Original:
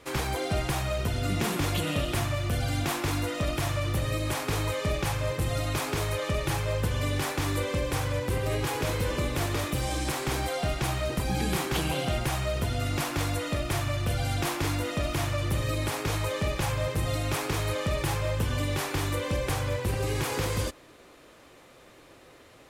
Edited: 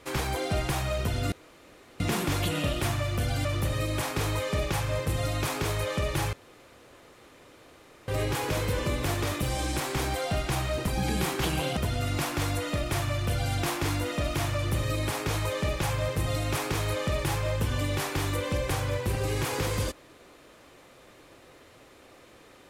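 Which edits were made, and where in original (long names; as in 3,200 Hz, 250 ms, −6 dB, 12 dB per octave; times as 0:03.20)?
0:01.32: splice in room tone 0.68 s
0:02.77–0:03.77: remove
0:06.65–0:08.40: fill with room tone
0:12.09–0:12.56: remove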